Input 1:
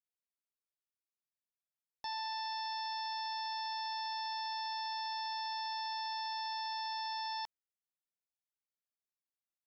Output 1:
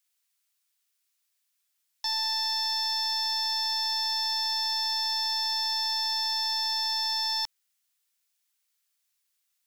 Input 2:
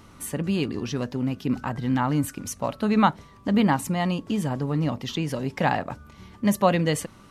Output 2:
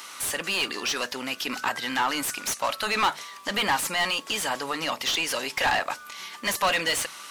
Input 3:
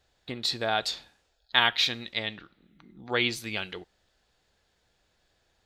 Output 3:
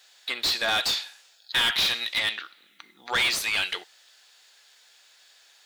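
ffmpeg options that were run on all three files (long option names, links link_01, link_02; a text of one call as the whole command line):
ffmpeg -i in.wav -filter_complex "[0:a]aderivative,bandreject=frequency=50:width_type=h:width=6,bandreject=frequency=100:width_type=h:width=6,bandreject=frequency=150:width_type=h:width=6,asplit=2[link_01][link_02];[link_02]highpass=frequency=720:poles=1,volume=31dB,asoftclip=type=tanh:threshold=-15dB[link_03];[link_01][link_03]amix=inputs=2:normalize=0,lowpass=frequency=2600:poles=1,volume=-6dB,volume=3dB" out.wav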